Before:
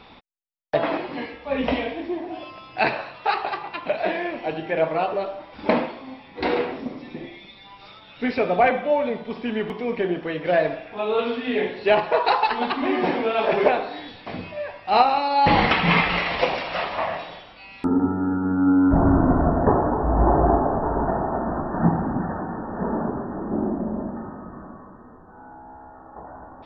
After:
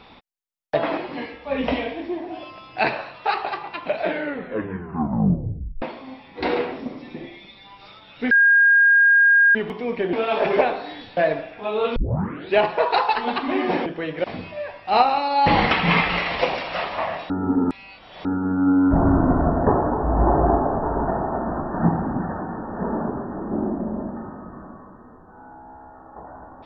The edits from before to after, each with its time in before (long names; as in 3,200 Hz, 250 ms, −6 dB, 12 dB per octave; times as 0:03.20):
0:03.99: tape stop 1.83 s
0:08.31–0:09.55: beep over 1,620 Hz −11 dBFS
0:10.13–0:10.51: swap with 0:13.20–0:14.24
0:11.30: tape start 0.58 s
0:17.30–0:18.25: reverse